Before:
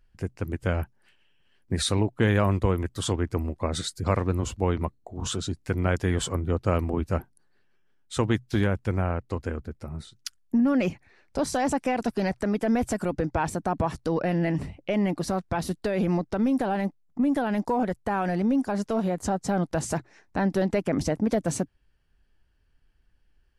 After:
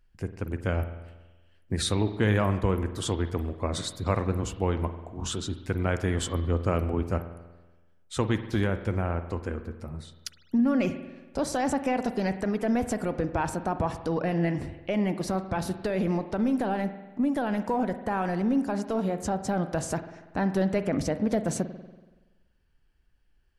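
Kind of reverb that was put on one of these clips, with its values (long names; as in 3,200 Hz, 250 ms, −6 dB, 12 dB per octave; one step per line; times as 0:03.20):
spring reverb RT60 1.2 s, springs 47 ms, chirp 30 ms, DRR 10 dB
level −2 dB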